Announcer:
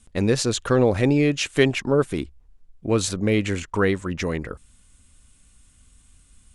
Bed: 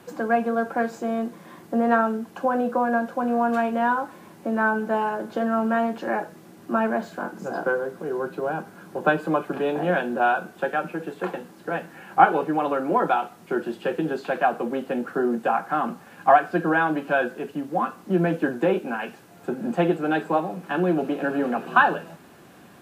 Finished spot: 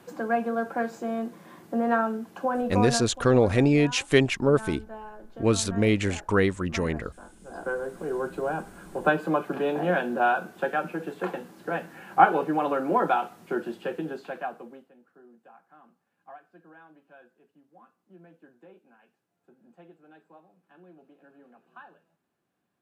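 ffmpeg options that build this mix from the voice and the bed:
ffmpeg -i stem1.wav -i stem2.wav -filter_complex "[0:a]adelay=2550,volume=-1.5dB[link_01];[1:a]volume=11.5dB,afade=type=out:start_time=2.84:duration=0.34:silence=0.211349,afade=type=in:start_time=7.42:duration=0.58:silence=0.16788,afade=type=out:start_time=13.29:duration=1.62:silence=0.0354813[link_02];[link_01][link_02]amix=inputs=2:normalize=0" out.wav

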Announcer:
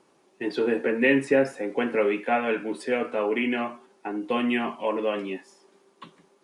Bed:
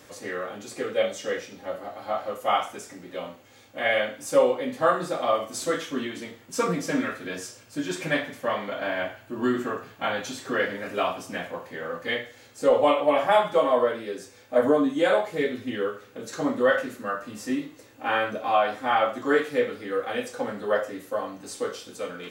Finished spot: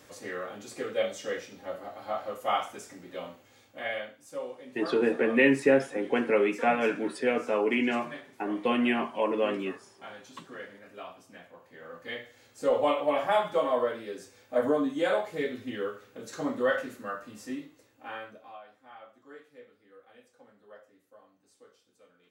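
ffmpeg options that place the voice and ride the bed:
ffmpeg -i stem1.wav -i stem2.wav -filter_complex "[0:a]adelay=4350,volume=-1dB[link_01];[1:a]volume=7.5dB,afade=type=out:start_time=3.4:duration=0.82:silence=0.223872,afade=type=in:start_time=11.57:duration=1.18:silence=0.251189,afade=type=out:start_time=16.91:duration=1.69:silence=0.0794328[link_02];[link_01][link_02]amix=inputs=2:normalize=0" out.wav

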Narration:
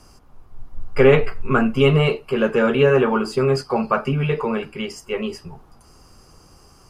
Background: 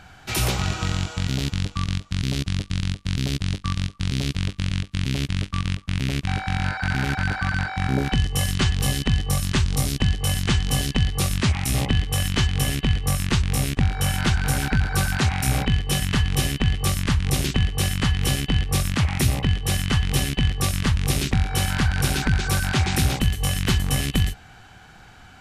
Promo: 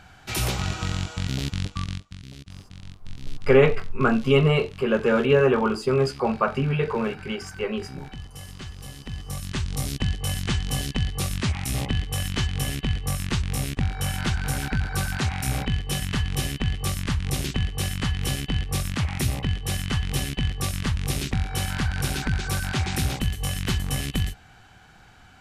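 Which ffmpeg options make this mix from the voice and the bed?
ffmpeg -i stem1.wav -i stem2.wav -filter_complex "[0:a]adelay=2500,volume=-3dB[link_01];[1:a]volume=10dB,afade=type=out:start_time=1.75:duration=0.44:silence=0.188365,afade=type=in:start_time=8.97:duration=0.97:silence=0.223872[link_02];[link_01][link_02]amix=inputs=2:normalize=0" out.wav

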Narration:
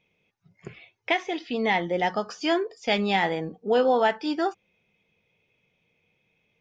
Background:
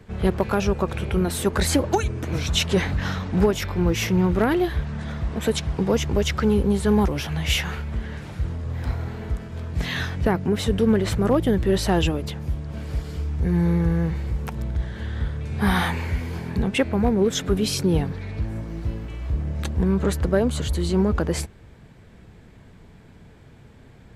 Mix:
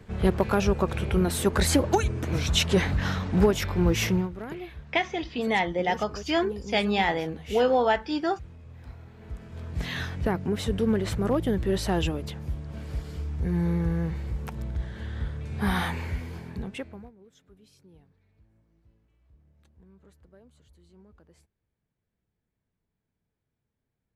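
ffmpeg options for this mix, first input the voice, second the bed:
ffmpeg -i stem1.wav -i stem2.wav -filter_complex "[0:a]adelay=3850,volume=-1dB[link_01];[1:a]volume=10.5dB,afade=type=out:start_time=4.09:duration=0.21:silence=0.158489,afade=type=in:start_time=9.14:duration=0.56:silence=0.251189,afade=type=out:start_time=16.06:duration=1.06:silence=0.0334965[link_02];[link_01][link_02]amix=inputs=2:normalize=0" out.wav

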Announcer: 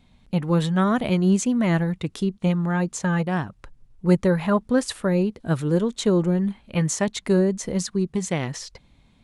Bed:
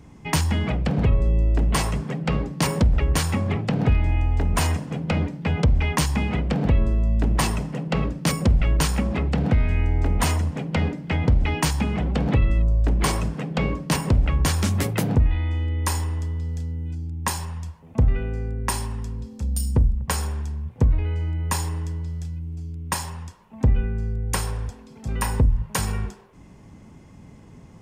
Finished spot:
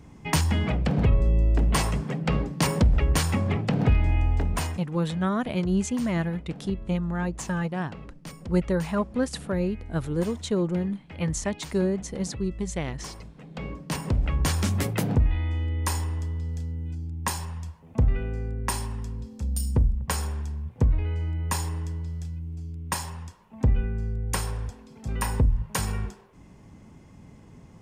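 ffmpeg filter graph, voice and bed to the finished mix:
ffmpeg -i stem1.wav -i stem2.wav -filter_complex "[0:a]adelay=4450,volume=-5.5dB[link_01];[1:a]volume=14.5dB,afade=type=out:start_time=4.3:duration=0.59:silence=0.133352,afade=type=in:start_time=13.35:duration=1.17:silence=0.158489[link_02];[link_01][link_02]amix=inputs=2:normalize=0" out.wav

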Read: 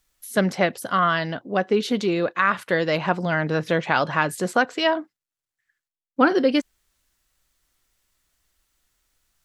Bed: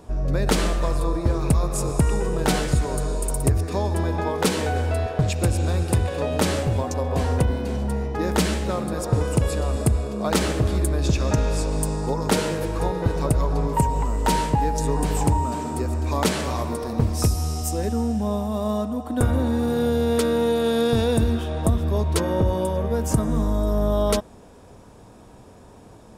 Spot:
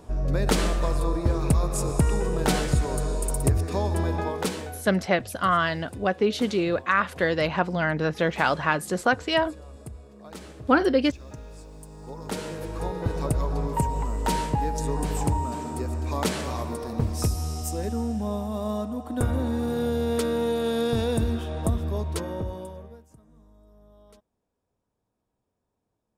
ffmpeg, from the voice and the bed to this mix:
ffmpeg -i stem1.wav -i stem2.wav -filter_complex "[0:a]adelay=4500,volume=-2dB[link_01];[1:a]volume=14dB,afade=type=out:start_time=4.12:duration=0.71:silence=0.11885,afade=type=in:start_time=11.88:duration=1.27:silence=0.158489,afade=type=out:start_time=21.72:duration=1.34:silence=0.0354813[link_02];[link_01][link_02]amix=inputs=2:normalize=0" out.wav

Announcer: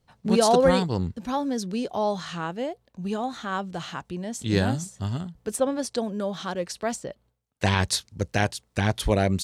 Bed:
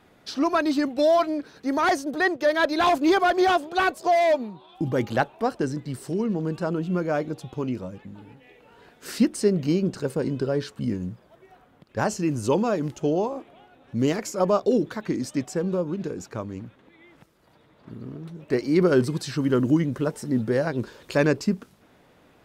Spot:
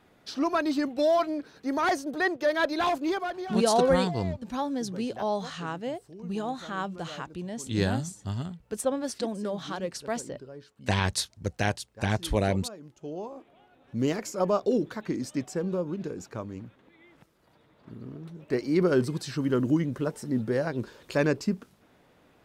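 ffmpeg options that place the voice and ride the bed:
ffmpeg -i stem1.wav -i stem2.wav -filter_complex "[0:a]adelay=3250,volume=-3.5dB[link_01];[1:a]volume=11.5dB,afade=type=out:start_time=2.66:duration=0.85:silence=0.16788,afade=type=in:start_time=12.91:duration=1.13:silence=0.16788[link_02];[link_01][link_02]amix=inputs=2:normalize=0" out.wav

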